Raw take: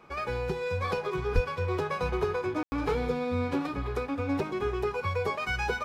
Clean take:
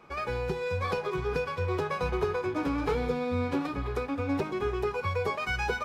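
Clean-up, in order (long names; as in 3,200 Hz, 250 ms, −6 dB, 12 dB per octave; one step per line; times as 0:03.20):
high-pass at the plosives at 0:01.34
ambience match 0:02.63–0:02.72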